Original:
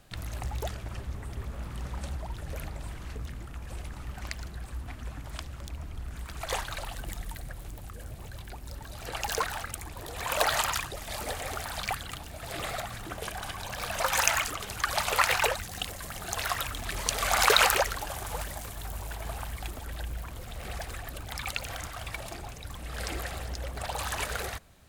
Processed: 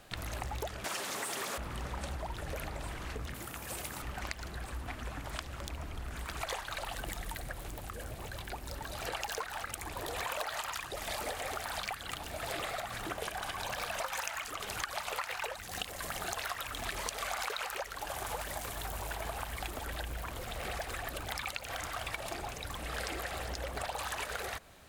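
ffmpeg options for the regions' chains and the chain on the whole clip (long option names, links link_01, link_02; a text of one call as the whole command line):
ffmpeg -i in.wav -filter_complex "[0:a]asettb=1/sr,asplit=3[link_01][link_02][link_03];[link_01]atrim=end=0.844[link_04];[link_02]atrim=start=0.84:end=1.58,asetpts=PTS-STARTPTS,afade=type=in:duration=0.004:curve=qsin,afade=type=out:start_time=0.736:duration=0.004:curve=qsin,highpass=frequency=140:width=0.5412,highpass=frequency=140:width=1.3066,bass=frequency=250:gain=-2,treble=frequency=4000:gain=13,asplit=2[link_05][link_06];[link_06]highpass=frequency=720:poles=1,volume=17dB,asoftclip=type=tanh:threshold=-25dB[link_07];[link_05][link_07]amix=inputs=2:normalize=0,lowpass=frequency=7200:poles=1,volume=-6dB[link_08];[link_03]atrim=start=1.576[link_09];[link_04][link_08]acrossfade=duration=0.004:curve1=hsin:curve2=qsin[link_10];[link_10][link_09]acrossfade=duration=0.004:curve1=qsin:curve2=hsin,asettb=1/sr,asplit=3[link_11][link_12][link_13];[link_11]atrim=end=3.344[link_14];[link_12]atrim=start=3.34:end=4.02,asetpts=PTS-STARTPTS,afade=type=in:duration=0.004:curve=qsin,afade=type=out:start_time=0.676:duration=0.004:curve=qsin,highpass=90,aemphasis=mode=production:type=50fm[link_15];[link_13]atrim=start=4.016[link_16];[link_14][link_15]acrossfade=duration=0.004:curve1=hsin:curve2=qsin[link_17];[link_17][link_16]acrossfade=duration=0.004:curve1=qsin:curve2=hsin,bass=frequency=250:gain=-8,treble=frequency=4000:gain=-3,acompressor=threshold=-39dB:ratio=12,volume=5dB" out.wav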